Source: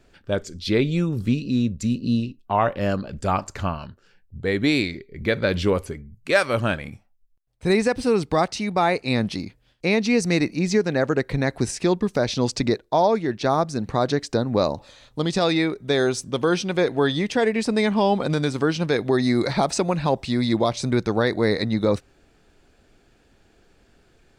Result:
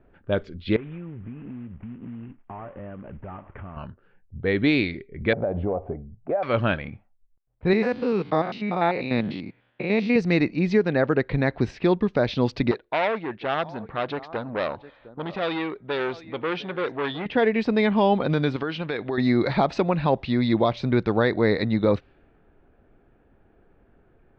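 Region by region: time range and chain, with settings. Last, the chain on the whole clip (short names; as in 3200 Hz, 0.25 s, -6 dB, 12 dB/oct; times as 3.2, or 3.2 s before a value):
0.76–3.77 CVSD 16 kbps + compressor, threshold -35 dBFS
5.33–6.43 synth low-pass 720 Hz, resonance Q 9 + compressor 4:1, threshold -23 dBFS
7.73–10.16 stepped spectrum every 0.1 s + HPF 130 Hz + mismatched tape noise reduction encoder only
12.71–17.26 low shelf 280 Hz -9.5 dB + echo 0.709 s -20.5 dB + core saturation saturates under 2000 Hz
18.56–19.18 tilt +2 dB/oct + compressor 4:1, threshold -23 dBFS
whole clip: low-pass opened by the level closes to 1300 Hz, open at -17 dBFS; LPF 3600 Hz 24 dB/oct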